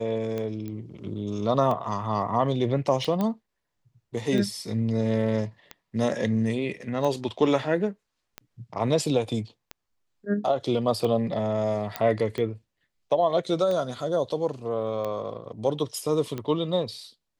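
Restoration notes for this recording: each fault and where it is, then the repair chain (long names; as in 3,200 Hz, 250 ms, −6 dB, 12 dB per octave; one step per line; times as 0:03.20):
scratch tick 45 rpm −19 dBFS
0:00.68: click −24 dBFS
0:03.21: click −15 dBFS
0:11.96: click −12 dBFS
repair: click removal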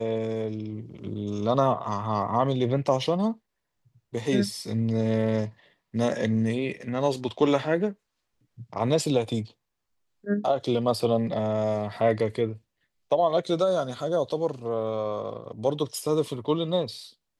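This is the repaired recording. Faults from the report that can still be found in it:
0:11.96: click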